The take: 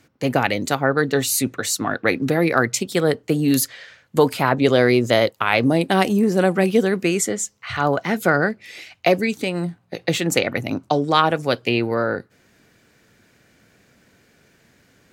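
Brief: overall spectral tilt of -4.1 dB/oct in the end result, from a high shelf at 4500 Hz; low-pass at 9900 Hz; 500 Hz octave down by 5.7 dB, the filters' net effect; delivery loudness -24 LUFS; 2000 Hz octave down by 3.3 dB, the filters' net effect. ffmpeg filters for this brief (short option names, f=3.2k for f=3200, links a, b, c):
-af "lowpass=9.9k,equalizer=f=500:t=o:g=-7,equalizer=f=2k:t=o:g=-4.5,highshelf=f=4.5k:g=3.5,volume=-1.5dB"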